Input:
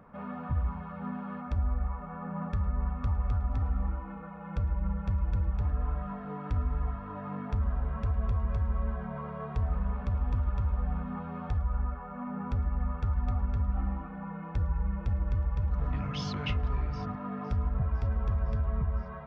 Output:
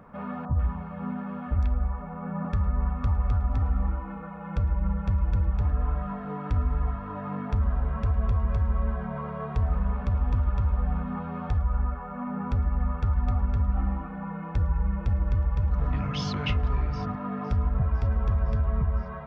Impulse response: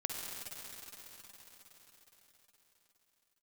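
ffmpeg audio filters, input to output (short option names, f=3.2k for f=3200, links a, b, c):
-filter_complex "[0:a]asettb=1/sr,asplit=3[a][b][c];[a]atrim=end=0.454[d];[b]atrim=start=0.45:end=2.45,asetpts=PTS-STARTPTS,afade=t=in:d=0.004:c=qsin,afade=t=out:st=1.996:d=0.004:c=qsin,acrossover=split=1200|4500[e][f][g];[g]adelay=110[h];[f]adelay=140[i];[e][i][h]amix=inputs=3:normalize=0,atrim=end_sample=88200[j];[c]atrim=start=2.446[k];[d][j]acrossfade=d=0.004:c1=hsin:c2=qsin[l];[l][k]acrossfade=d=0.004:c1=qsin:c2=hsin,volume=4.5dB"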